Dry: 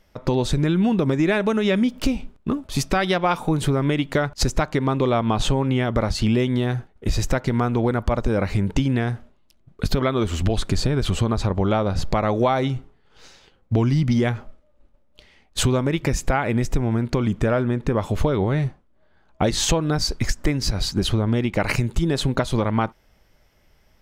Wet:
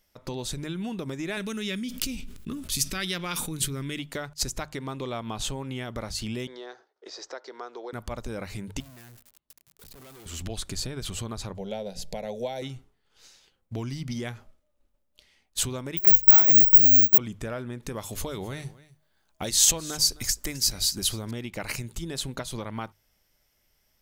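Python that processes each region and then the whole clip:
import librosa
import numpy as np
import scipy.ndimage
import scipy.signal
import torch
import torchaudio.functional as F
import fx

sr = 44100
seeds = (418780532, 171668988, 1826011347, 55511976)

y = fx.chain(x, sr, fx.peak_eq(hz=740.0, db=-14.5, octaves=1.3),
    fx.env_flatten(amount_pct=70), at=(1.37, 3.99))
y = fx.chain(y, sr, fx.ellip_bandpass(low_hz=390.0, high_hz=5300.0, order=3, stop_db=40),
    fx.peak_eq(hz=2600.0, db=-11.5, octaves=0.87),
    fx.band_squash(depth_pct=40), at=(6.47, 7.93))
y = fx.chain(y, sr, fx.crossing_spikes(level_db=-22.0),
    fx.tube_stage(drive_db=34.0, bias=0.8),
    fx.high_shelf(hz=3900.0, db=-10.0), at=(8.8, 10.26))
y = fx.chain(y, sr, fx.peak_eq(hz=470.0, db=5.0, octaves=0.76),
    fx.fixed_phaser(hz=320.0, stages=6), at=(11.57, 12.62))
y = fx.chain(y, sr, fx.lowpass(hz=2800.0, slope=12),
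    fx.resample_bad(factor=2, down='none', up='zero_stuff'), at=(15.97, 17.18))
y = fx.chain(y, sr, fx.high_shelf(hz=4300.0, db=10.5),
    fx.echo_single(ms=262, db=-19.0), at=(17.82, 21.31))
y = F.preemphasis(torch.from_numpy(y), 0.8).numpy()
y = fx.hum_notches(y, sr, base_hz=50, count=3)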